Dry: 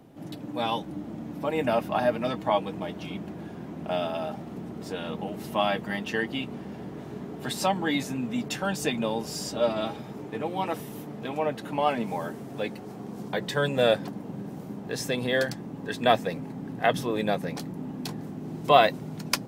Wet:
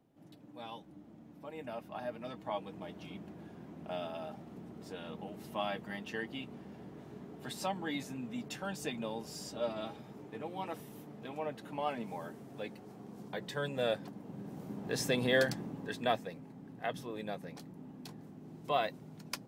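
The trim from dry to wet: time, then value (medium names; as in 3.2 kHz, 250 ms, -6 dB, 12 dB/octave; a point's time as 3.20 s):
1.74 s -18 dB
2.96 s -11 dB
14.16 s -11 dB
14.96 s -3 dB
15.61 s -3 dB
16.33 s -14 dB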